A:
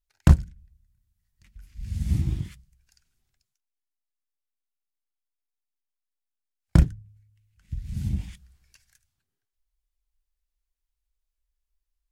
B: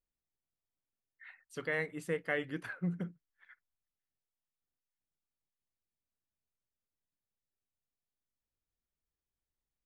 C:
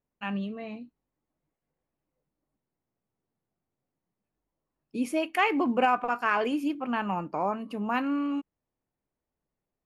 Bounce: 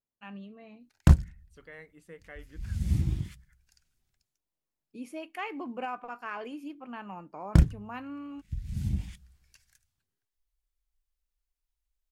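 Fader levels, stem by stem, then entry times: -2.5 dB, -13.5 dB, -12.0 dB; 0.80 s, 0.00 s, 0.00 s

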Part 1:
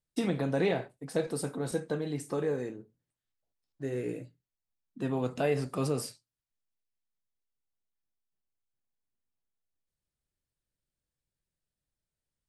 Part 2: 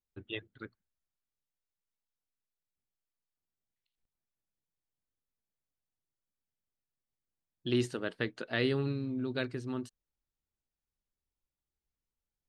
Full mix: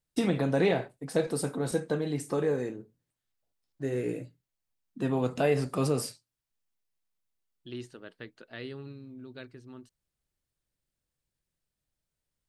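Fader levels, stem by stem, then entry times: +3.0 dB, -10.5 dB; 0.00 s, 0.00 s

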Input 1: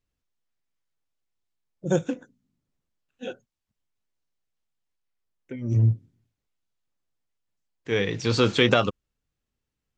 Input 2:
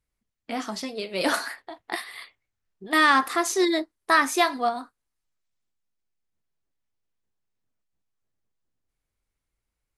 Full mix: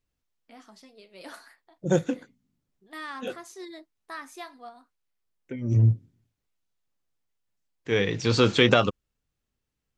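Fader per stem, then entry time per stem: +0.5 dB, -19.5 dB; 0.00 s, 0.00 s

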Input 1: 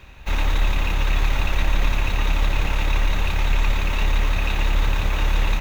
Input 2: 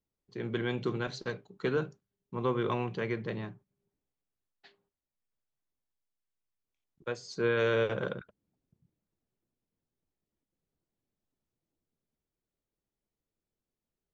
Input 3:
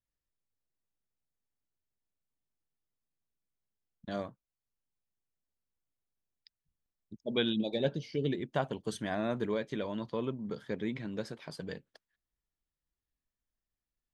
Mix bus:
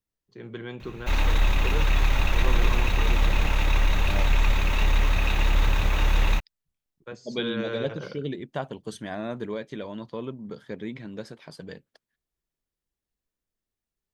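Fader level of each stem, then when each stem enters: -1.5 dB, -4.5 dB, +0.5 dB; 0.80 s, 0.00 s, 0.00 s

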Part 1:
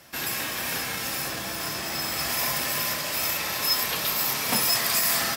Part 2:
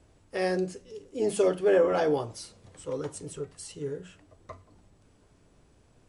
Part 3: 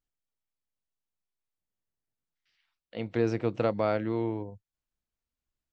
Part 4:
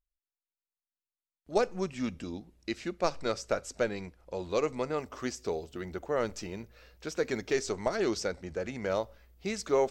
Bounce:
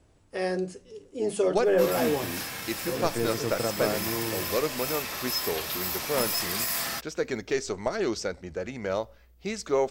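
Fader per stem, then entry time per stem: -6.0 dB, -1.0 dB, -3.0 dB, +1.5 dB; 1.65 s, 0.00 s, 0.00 s, 0.00 s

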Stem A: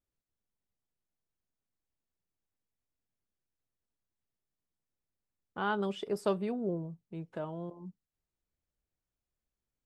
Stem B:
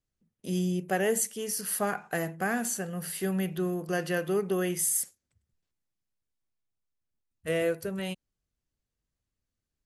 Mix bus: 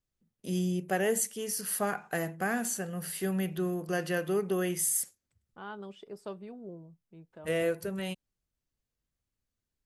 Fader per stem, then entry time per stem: -10.5 dB, -1.5 dB; 0.00 s, 0.00 s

